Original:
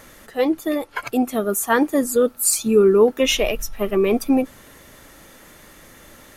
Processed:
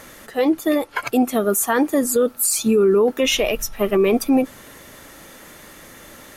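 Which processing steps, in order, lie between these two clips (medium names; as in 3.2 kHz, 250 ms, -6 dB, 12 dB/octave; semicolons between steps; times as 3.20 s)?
bass shelf 78 Hz -7.5 dB; loudness maximiser +12.5 dB; trim -8 dB; MP3 160 kbps 44.1 kHz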